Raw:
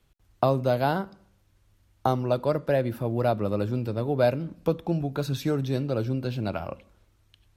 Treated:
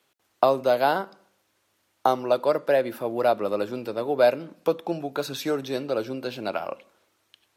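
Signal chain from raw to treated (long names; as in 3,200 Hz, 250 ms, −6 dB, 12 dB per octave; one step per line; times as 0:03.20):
high-pass filter 390 Hz 12 dB per octave
level +4.5 dB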